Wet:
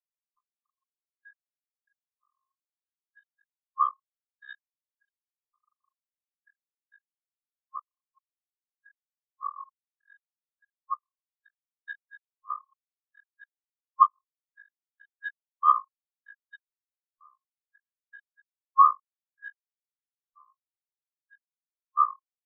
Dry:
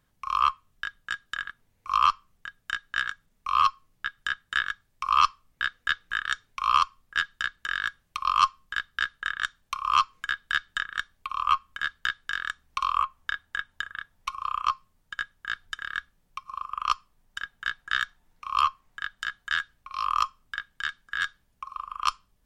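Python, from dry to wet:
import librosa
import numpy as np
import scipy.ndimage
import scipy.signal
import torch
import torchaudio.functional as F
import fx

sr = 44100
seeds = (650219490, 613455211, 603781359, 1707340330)

y = x[::-1].copy()
y = fx.filter_lfo_lowpass(y, sr, shape='square', hz=1.6, low_hz=590.0, high_hz=3900.0, q=2.1)
y = fx.spectral_expand(y, sr, expansion=4.0)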